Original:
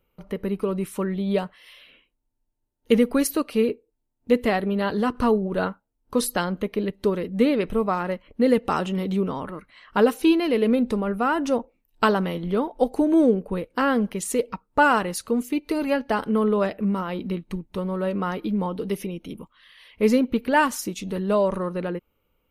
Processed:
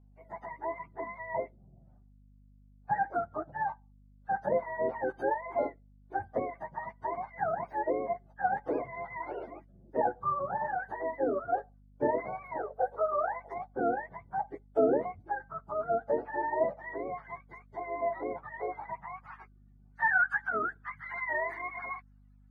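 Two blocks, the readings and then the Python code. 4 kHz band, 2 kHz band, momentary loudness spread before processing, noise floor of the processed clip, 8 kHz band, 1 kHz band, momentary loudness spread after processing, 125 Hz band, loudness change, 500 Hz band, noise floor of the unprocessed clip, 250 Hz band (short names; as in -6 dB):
under -35 dB, -4.5 dB, 10 LU, -59 dBFS, under -40 dB, -5.0 dB, 12 LU, -18.5 dB, -10.0 dB, -9.0 dB, -75 dBFS, -19.5 dB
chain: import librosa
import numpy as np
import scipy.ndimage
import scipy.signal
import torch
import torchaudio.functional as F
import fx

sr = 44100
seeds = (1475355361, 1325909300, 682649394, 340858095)

y = fx.octave_mirror(x, sr, pivot_hz=620.0)
y = fx.filter_sweep_bandpass(y, sr, from_hz=580.0, to_hz=1500.0, start_s=18.74, end_s=19.76, q=2.3)
y = fx.add_hum(y, sr, base_hz=50, snr_db=25)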